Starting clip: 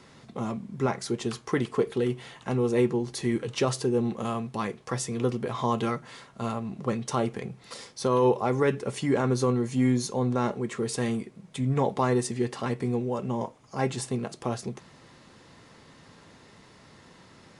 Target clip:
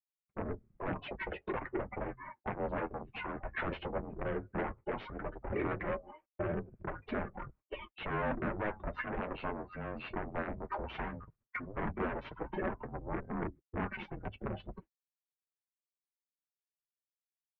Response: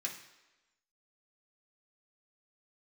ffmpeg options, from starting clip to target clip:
-af "agate=range=-49dB:threshold=-44dB:ratio=16:detection=peak,afftdn=nr=30:nf=-41,aeval=exprs='0.251*(cos(1*acos(clip(val(0)/0.251,-1,1)))-cos(1*PI/2))+0.00355*(cos(6*acos(clip(val(0)/0.251,-1,1)))-cos(6*PI/2))+0.0224*(cos(8*acos(clip(val(0)/0.251,-1,1)))-cos(8*PI/2))':c=same,acompressor=threshold=-27dB:ratio=2,alimiter=limit=-23dB:level=0:latency=1:release=251,highpass=290,asetrate=32097,aresample=44100,atempo=1.37395,aeval=exprs='0.0891*sin(PI/2*3.98*val(0)/0.0891)':c=same,afreqshift=-47,flanger=delay=3.6:depth=9.1:regen=-31:speed=0.15:shape=triangular,highpass=f=400:t=q:w=0.5412,highpass=f=400:t=q:w=1.307,lowpass=f=2.7k:t=q:w=0.5176,lowpass=f=2.7k:t=q:w=0.7071,lowpass=f=2.7k:t=q:w=1.932,afreqshift=-350,volume=-3.5dB"

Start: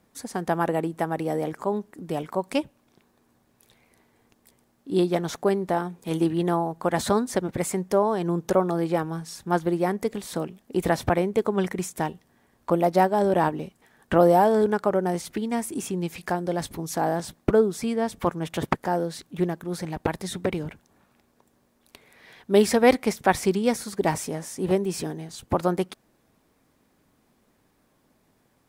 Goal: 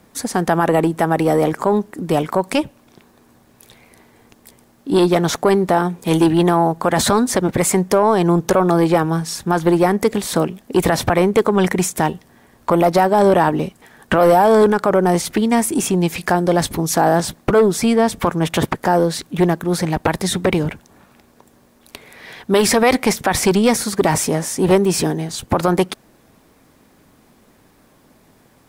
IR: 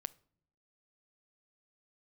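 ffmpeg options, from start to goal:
-filter_complex "[0:a]acrossover=split=660[a][b];[a]asoftclip=type=tanh:threshold=-22dB[c];[c][b]amix=inputs=2:normalize=0,alimiter=level_in=17.5dB:limit=-1dB:release=50:level=0:latency=1,volume=-4.5dB"

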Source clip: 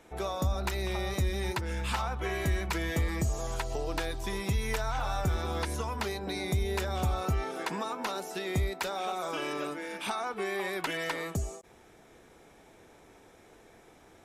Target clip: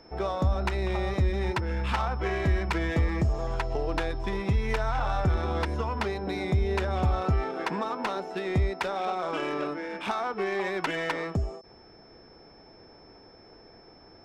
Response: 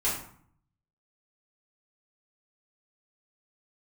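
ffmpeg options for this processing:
-af "adynamicsmooth=sensitivity=3.5:basefreq=1.9k,aeval=exprs='val(0)+0.000891*sin(2*PI*5300*n/s)':c=same,volume=4.5dB"

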